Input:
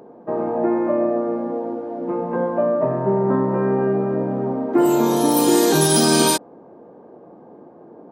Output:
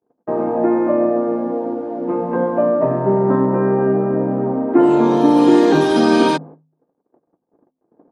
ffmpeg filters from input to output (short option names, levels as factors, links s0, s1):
-af "asetnsamples=n=441:p=0,asendcmd='3.45 lowpass f 2600',lowpass=9900,agate=range=0.00501:threshold=0.0112:ratio=16:detection=peak,equalizer=f=280:t=o:w=0.23:g=5.5,bandreject=f=51.76:t=h:w=4,bandreject=f=103.52:t=h:w=4,bandreject=f=155.28:t=h:w=4,bandreject=f=207.04:t=h:w=4,bandreject=f=258.8:t=h:w=4,volume=1.41"